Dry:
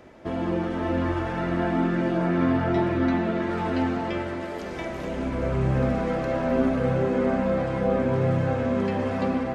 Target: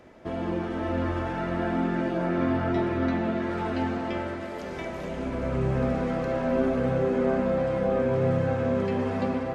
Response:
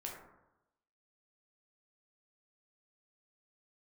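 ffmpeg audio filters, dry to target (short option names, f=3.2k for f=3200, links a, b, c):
-filter_complex "[0:a]asplit=2[a][b];[1:a]atrim=start_sample=2205,asetrate=30429,aresample=44100[c];[b][c]afir=irnorm=-1:irlink=0,volume=-5dB[d];[a][d]amix=inputs=2:normalize=0,volume=-5.5dB"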